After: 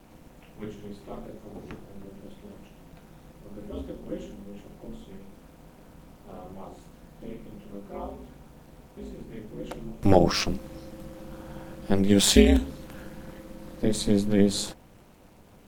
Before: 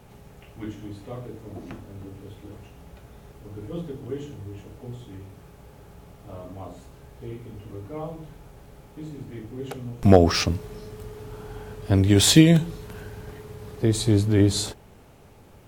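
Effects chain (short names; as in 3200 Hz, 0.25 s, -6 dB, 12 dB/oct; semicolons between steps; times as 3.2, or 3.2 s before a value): crackle 160/s -51 dBFS; requantised 12-bit, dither none; ring modulator 100 Hz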